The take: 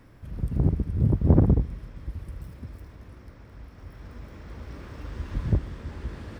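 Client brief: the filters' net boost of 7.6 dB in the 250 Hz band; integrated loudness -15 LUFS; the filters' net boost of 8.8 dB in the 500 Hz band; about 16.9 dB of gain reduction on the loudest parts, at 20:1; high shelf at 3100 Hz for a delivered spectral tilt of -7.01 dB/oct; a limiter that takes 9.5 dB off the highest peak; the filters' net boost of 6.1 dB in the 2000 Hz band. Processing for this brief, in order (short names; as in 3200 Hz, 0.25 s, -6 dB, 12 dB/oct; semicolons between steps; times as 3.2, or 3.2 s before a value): bell 250 Hz +8 dB; bell 500 Hz +8 dB; bell 2000 Hz +5.5 dB; high shelf 3100 Hz +4.5 dB; compressor 20:1, threshold -25 dBFS; gain +22.5 dB; limiter -2 dBFS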